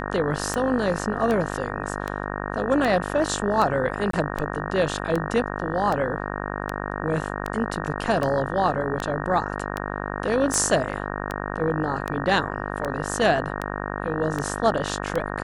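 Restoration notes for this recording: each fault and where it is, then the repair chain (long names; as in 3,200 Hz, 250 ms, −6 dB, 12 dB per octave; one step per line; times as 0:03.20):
mains buzz 50 Hz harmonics 37 −30 dBFS
scratch tick 78 rpm −13 dBFS
0:04.11–0:04.13: drop-out 23 ms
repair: click removal
hum removal 50 Hz, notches 37
repair the gap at 0:04.11, 23 ms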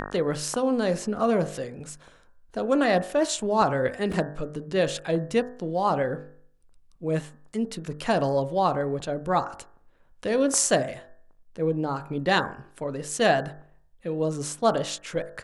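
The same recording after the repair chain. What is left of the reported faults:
none of them is left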